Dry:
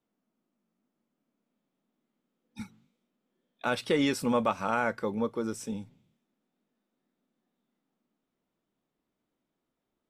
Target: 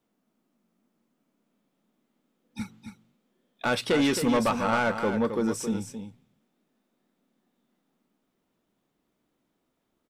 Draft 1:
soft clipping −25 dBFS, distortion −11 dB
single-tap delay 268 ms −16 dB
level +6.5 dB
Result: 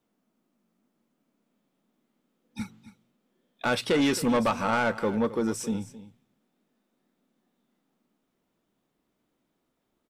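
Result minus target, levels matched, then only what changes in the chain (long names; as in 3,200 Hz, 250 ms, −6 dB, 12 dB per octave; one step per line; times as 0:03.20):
echo-to-direct −7.5 dB
change: single-tap delay 268 ms −8.5 dB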